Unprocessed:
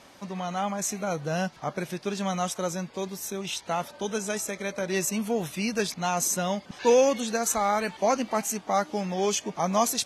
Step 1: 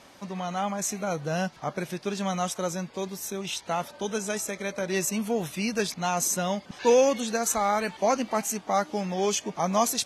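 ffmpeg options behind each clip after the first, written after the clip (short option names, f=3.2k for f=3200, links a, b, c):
-af anull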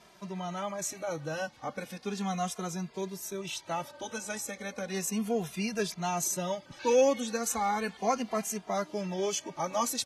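-filter_complex "[0:a]asplit=2[a][b];[b]adelay=2.5,afreqshift=-0.35[c];[a][c]amix=inputs=2:normalize=1,volume=-2dB"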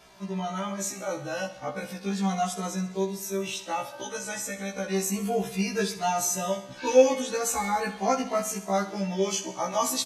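-af "aecho=1:1:65|130|195|260|325|390:0.237|0.133|0.0744|0.0416|0.0233|0.0131,afftfilt=real='re*1.73*eq(mod(b,3),0)':imag='im*1.73*eq(mod(b,3),0)':win_size=2048:overlap=0.75,volume=6dB"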